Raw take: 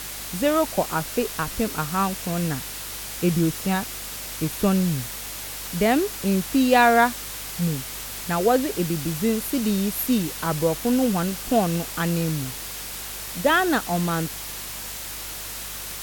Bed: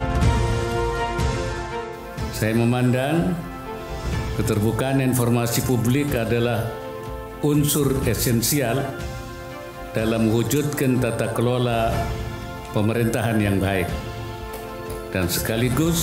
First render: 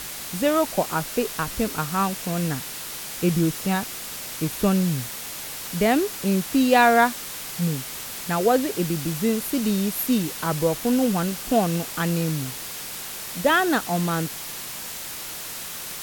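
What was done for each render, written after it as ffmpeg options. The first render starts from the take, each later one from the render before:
-af "bandreject=f=50:t=h:w=4,bandreject=f=100:t=h:w=4"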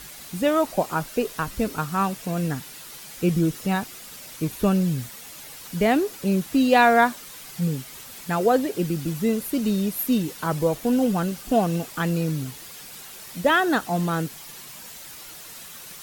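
-af "afftdn=nr=9:nf=-35"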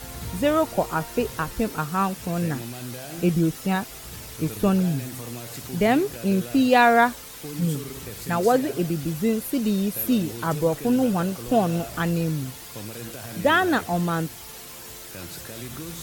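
-filter_complex "[1:a]volume=0.141[s0];[0:a][s0]amix=inputs=2:normalize=0"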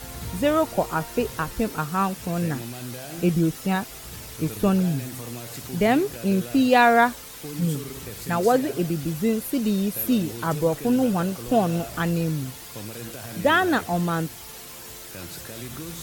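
-af anull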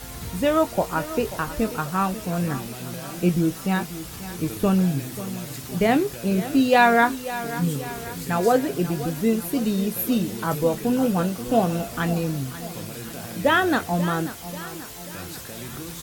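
-filter_complex "[0:a]asplit=2[s0][s1];[s1]adelay=22,volume=0.282[s2];[s0][s2]amix=inputs=2:normalize=0,aecho=1:1:538|1076|1614|2152|2690:0.2|0.106|0.056|0.0297|0.0157"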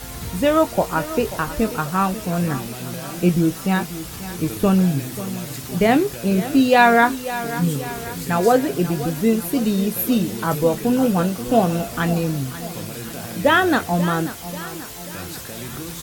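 -af "volume=1.5,alimiter=limit=0.708:level=0:latency=1"

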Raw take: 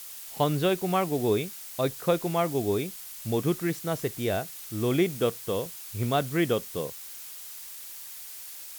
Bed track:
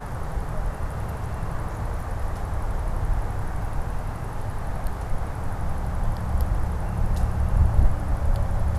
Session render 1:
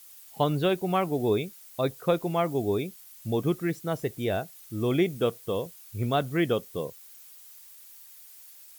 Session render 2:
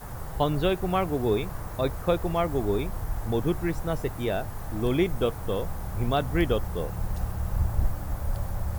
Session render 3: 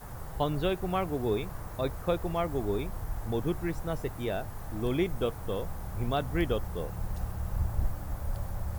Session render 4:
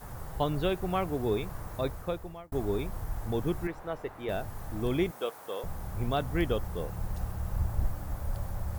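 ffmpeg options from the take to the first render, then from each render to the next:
-af "afftdn=nr=11:nf=-42"
-filter_complex "[1:a]volume=0.473[s0];[0:a][s0]amix=inputs=2:normalize=0"
-af "volume=0.596"
-filter_complex "[0:a]asettb=1/sr,asplit=3[s0][s1][s2];[s0]atrim=end=3.674[s3];[s1]atrim=start=3.67:end=4.29,asetpts=PTS-STARTPTS,afade=t=in:d=0.004:c=qsin,afade=t=out:st=0.616:d=0.004:c=qsin,bass=f=250:g=-12,treble=f=4000:g=-13[s4];[s2]atrim=start=4.286[s5];[s3][s4]acrossfade=d=0.004:c1=hsin:c2=qsin[s6];[s6][s5]acrossfade=d=0.004:c1=qsin:c2=hsin,asettb=1/sr,asplit=3[s7][s8][s9];[s7]atrim=end=5.114[s10];[s8]atrim=start=5.11:end=5.64,asetpts=PTS-STARTPTS,afade=t=in:d=0.004:c=qsin,afade=t=out:st=0.526:d=0.004:c=qsin,highpass=480[s11];[s9]atrim=start=5.636[s12];[s10][s11]acrossfade=d=0.004:c1=hsin:c2=qsin[s13];[s13][s12]acrossfade=d=0.004:c1=qsin:c2=hsin,asplit=2[s14][s15];[s14]atrim=end=2.52,asetpts=PTS-STARTPTS,afade=t=out:st=1.81:d=0.71[s16];[s15]atrim=start=2.52,asetpts=PTS-STARTPTS,afade=t=in:d=0.004:c=hsin[s17];[s16][s17]concat=n=2:v=0:a=1"

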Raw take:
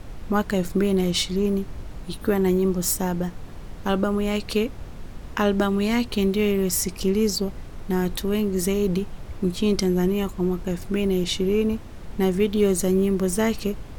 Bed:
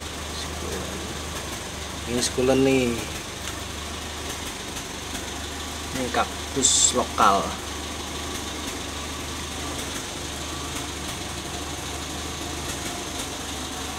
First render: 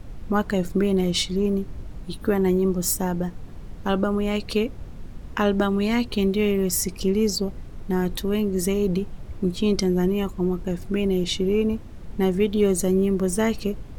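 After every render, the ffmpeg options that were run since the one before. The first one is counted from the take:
-af "afftdn=nr=6:nf=-39"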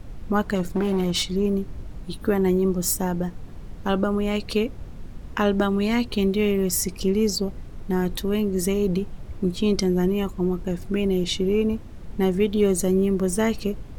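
-filter_complex "[0:a]asettb=1/sr,asplit=3[s0][s1][s2];[s0]atrim=end=0.554[s3];[s1]atrim=start=0.55:end=1.35,asetpts=PTS-STARTPTS,afade=t=in:d=0.004:c=qsin,afade=t=out:st=0.796:d=0.004:c=qsin,asoftclip=type=hard:threshold=0.119[s4];[s2]atrim=start=1.346[s5];[s3][s4]acrossfade=d=0.004:c1=hsin:c2=qsin[s6];[s6][s5]acrossfade=d=0.004:c1=qsin:c2=hsin"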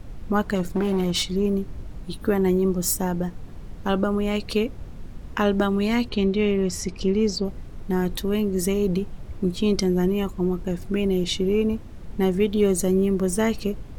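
-filter_complex "[0:a]asettb=1/sr,asplit=3[s0][s1][s2];[s0]atrim=end=6.094[s3];[s1]atrim=start=6.09:end=7.45,asetpts=PTS-STARTPTS,afade=t=in:d=0.004:c=qsin,afade=t=out:st=1.356:d=0.004:c=qsin,lowpass=5400[s4];[s2]atrim=start=7.446[s5];[s3][s4]acrossfade=d=0.004:c1=hsin:c2=qsin[s6];[s6][s5]acrossfade=d=0.004:c1=qsin:c2=hsin"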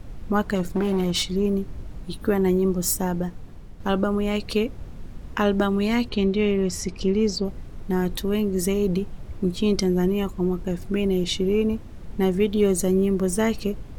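-filter_complex "[0:a]asplit=2[s0][s1];[s0]atrim=end=3.8,asetpts=PTS-STARTPTS,afade=t=out:st=3.17:d=0.63:silence=0.501187[s2];[s1]atrim=start=3.8,asetpts=PTS-STARTPTS,afade=t=in:d=0.004:c=hsin:silence=0.501187[s3];[s2][s3]concat=n=2:v=0:a=1"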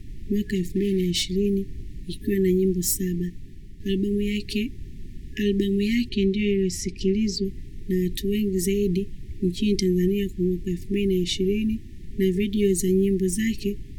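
-af "equalizer=f=1200:t=o:w=0.49:g=-9.5,afftfilt=real='re*(1-between(b*sr/4096,410,1700))':imag='im*(1-between(b*sr/4096,410,1700))':win_size=4096:overlap=0.75"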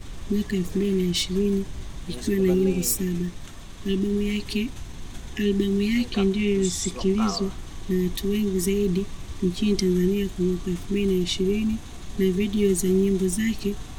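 -filter_complex "[1:a]volume=0.2[s0];[0:a][s0]amix=inputs=2:normalize=0"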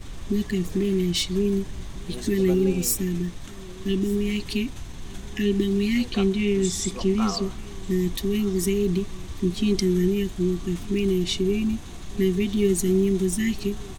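-af "aecho=1:1:1197:0.0794"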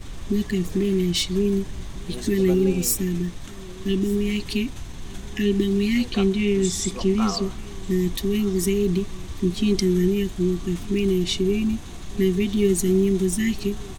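-af "volume=1.19"

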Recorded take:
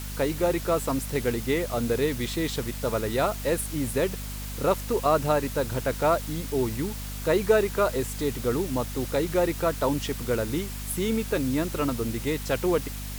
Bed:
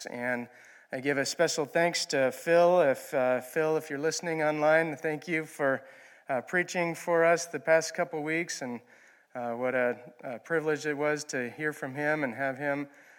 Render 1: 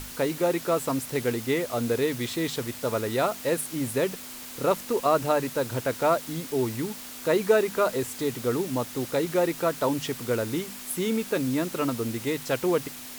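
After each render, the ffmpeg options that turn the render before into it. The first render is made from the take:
-af "bandreject=f=50:t=h:w=6,bandreject=f=100:t=h:w=6,bandreject=f=150:t=h:w=6,bandreject=f=200:t=h:w=6"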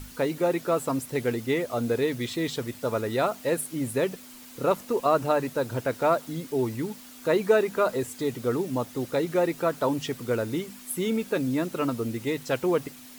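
-af "afftdn=nr=8:nf=-41"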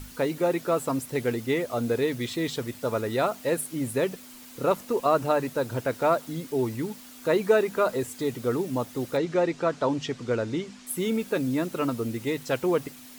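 -filter_complex "[0:a]asettb=1/sr,asplit=3[s0][s1][s2];[s0]atrim=end=9.174[s3];[s1]atrim=start=9.17:end=10.87,asetpts=PTS-STARTPTS,afade=t=in:d=0.004:c=qsin,afade=t=out:st=1.696:d=0.004:c=qsin,lowpass=f=7000:w=0.5412,lowpass=f=7000:w=1.3066[s4];[s2]atrim=start=10.866[s5];[s3][s4]acrossfade=d=0.004:c1=hsin:c2=qsin[s6];[s6][s5]acrossfade=d=0.004:c1=qsin:c2=hsin"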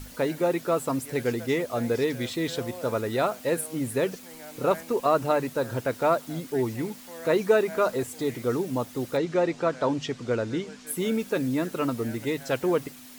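-filter_complex "[1:a]volume=0.133[s0];[0:a][s0]amix=inputs=2:normalize=0"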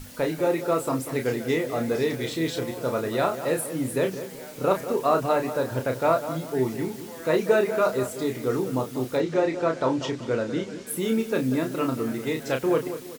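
-filter_complex "[0:a]asplit=2[s0][s1];[s1]adelay=31,volume=0.501[s2];[s0][s2]amix=inputs=2:normalize=0,asplit=2[s3][s4];[s4]adelay=190,lowpass=f=2000:p=1,volume=0.282,asplit=2[s5][s6];[s6]adelay=190,lowpass=f=2000:p=1,volume=0.38,asplit=2[s7][s8];[s8]adelay=190,lowpass=f=2000:p=1,volume=0.38,asplit=2[s9][s10];[s10]adelay=190,lowpass=f=2000:p=1,volume=0.38[s11];[s3][s5][s7][s9][s11]amix=inputs=5:normalize=0"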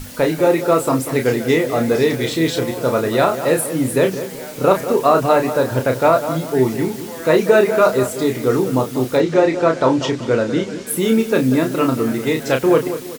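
-af "volume=2.82,alimiter=limit=0.794:level=0:latency=1"

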